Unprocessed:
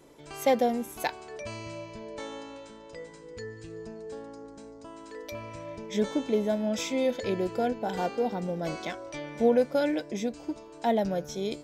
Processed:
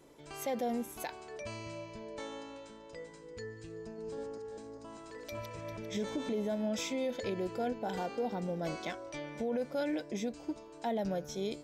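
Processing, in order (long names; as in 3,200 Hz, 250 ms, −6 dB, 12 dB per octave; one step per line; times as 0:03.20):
0:03.78–0:06.29: feedback delay that plays each chunk backwards 199 ms, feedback 55%, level −3.5 dB
brickwall limiter −22.5 dBFS, peak gain reduction 10.5 dB
level −4 dB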